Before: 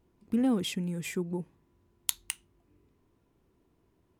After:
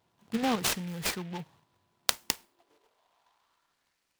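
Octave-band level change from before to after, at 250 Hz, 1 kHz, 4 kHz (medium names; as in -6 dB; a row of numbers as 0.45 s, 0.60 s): -4.5 dB, +10.0 dB, +6.0 dB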